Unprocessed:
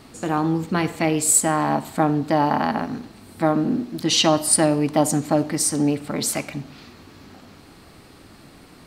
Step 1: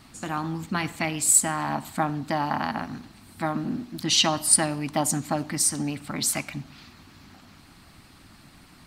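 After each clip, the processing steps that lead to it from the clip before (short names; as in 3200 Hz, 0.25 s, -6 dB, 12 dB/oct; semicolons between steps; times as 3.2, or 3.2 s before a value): harmonic-percussive split harmonic -6 dB; bell 460 Hz -12.5 dB 0.9 oct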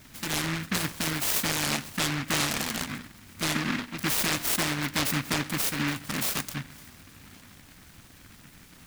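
limiter -17 dBFS, peak gain reduction 11 dB; noise-modulated delay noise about 1700 Hz, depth 0.45 ms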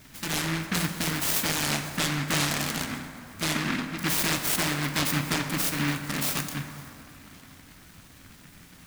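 plate-style reverb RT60 2.8 s, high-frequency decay 0.45×, DRR 6 dB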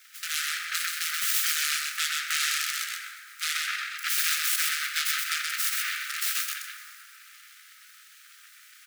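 brick-wall FIR high-pass 1200 Hz; echo 0.127 s -3.5 dB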